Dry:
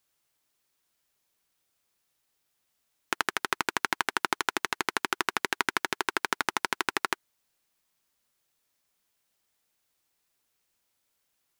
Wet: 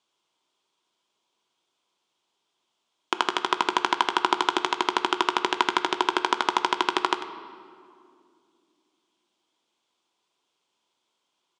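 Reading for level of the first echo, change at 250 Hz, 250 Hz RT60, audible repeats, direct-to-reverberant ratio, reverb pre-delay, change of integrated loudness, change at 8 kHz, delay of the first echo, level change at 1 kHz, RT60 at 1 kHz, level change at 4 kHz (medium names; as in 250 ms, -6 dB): -13.0 dB, +7.0 dB, 3.4 s, 1, 8.0 dB, 3 ms, +5.0 dB, -2.5 dB, 96 ms, +8.0 dB, 2.1 s, +6.0 dB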